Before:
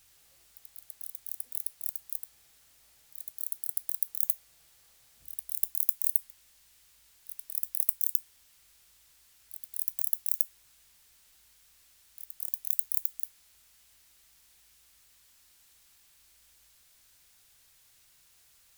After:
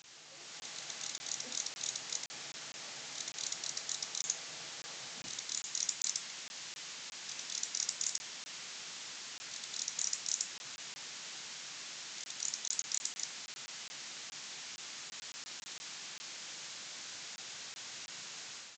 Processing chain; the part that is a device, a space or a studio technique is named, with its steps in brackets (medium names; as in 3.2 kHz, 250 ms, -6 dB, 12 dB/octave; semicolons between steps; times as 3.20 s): call with lost packets (high-pass 150 Hz 24 dB/octave; resampled via 16 kHz; level rider gain up to 10 dB; lost packets of 20 ms); trim +11 dB